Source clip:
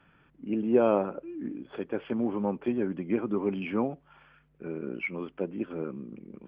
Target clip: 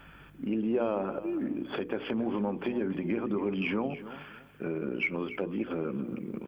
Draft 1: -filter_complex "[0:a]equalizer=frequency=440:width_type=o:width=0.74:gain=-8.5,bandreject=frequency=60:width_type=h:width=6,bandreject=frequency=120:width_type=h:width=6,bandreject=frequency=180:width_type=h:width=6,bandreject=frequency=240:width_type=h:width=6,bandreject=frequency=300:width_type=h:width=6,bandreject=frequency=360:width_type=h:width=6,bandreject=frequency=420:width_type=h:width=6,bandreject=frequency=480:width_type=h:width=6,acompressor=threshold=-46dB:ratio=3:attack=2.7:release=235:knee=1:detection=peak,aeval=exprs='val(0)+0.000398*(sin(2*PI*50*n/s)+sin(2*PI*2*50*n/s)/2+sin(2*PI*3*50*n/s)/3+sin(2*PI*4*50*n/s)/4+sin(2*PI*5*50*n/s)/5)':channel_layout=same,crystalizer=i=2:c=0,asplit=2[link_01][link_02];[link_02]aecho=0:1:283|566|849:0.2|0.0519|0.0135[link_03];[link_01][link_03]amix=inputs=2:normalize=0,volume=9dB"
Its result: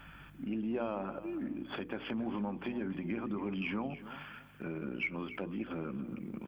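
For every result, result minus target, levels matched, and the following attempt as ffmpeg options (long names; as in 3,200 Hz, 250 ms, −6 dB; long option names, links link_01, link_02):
downward compressor: peak gain reduction +3.5 dB; 500 Hz band −2.5 dB
-filter_complex "[0:a]equalizer=frequency=440:width_type=o:width=0.74:gain=-8.5,bandreject=frequency=60:width_type=h:width=6,bandreject=frequency=120:width_type=h:width=6,bandreject=frequency=180:width_type=h:width=6,bandreject=frequency=240:width_type=h:width=6,bandreject=frequency=300:width_type=h:width=6,bandreject=frequency=360:width_type=h:width=6,bandreject=frequency=420:width_type=h:width=6,bandreject=frequency=480:width_type=h:width=6,acompressor=threshold=-38dB:ratio=3:attack=2.7:release=235:knee=1:detection=peak,aeval=exprs='val(0)+0.000398*(sin(2*PI*50*n/s)+sin(2*PI*2*50*n/s)/2+sin(2*PI*3*50*n/s)/3+sin(2*PI*4*50*n/s)/4+sin(2*PI*5*50*n/s)/5)':channel_layout=same,crystalizer=i=2:c=0,asplit=2[link_01][link_02];[link_02]aecho=0:1:283|566|849:0.2|0.0519|0.0135[link_03];[link_01][link_03]amix=inputs=2:normalize=0,volume=9dB"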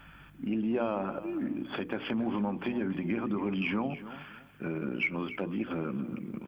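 500 Hz band −3.0 dB
-filter_complex "[0:a]bandreject=frequency=60:width_type=h:width=6,bandreject=frequency=120:width_type=h:width=6,bandreject=frequency=180:width_type=h:width=6,bandreject=frequency=240:width_type=h:width=6,bandreject=frequency=300:width_type=h:width=6,bandreject=frequency=360:width_type=h:width=6,bandreject=frequency=420:width_type=h:width=6,bandreject=frequency=480:width_type=h:width=6,acompressor=threshold=-38dB:ratio=3:attack=2.7:release=235:knee=1:detection=peak,aeval=exprs='val(0)+0.000398*(sin(2*PI*50*n/s)+sin(2*PI*2*50*n/s)/2+sin(2*PI*3*50*n/s)/3+sin(2*PI*4*50*n/s)/4+sin(2*PI*5*50*n/s)/5)':channel_layout=same,crystalizer=i=2:c=0,asplit=2[link_01][link_02];[link_02]aecho=0:1:283|566|849:0.2|0.0519|0.0135[link_03];[link_01][link_03]amix=inputs=2:normalize=0,volume=9dB"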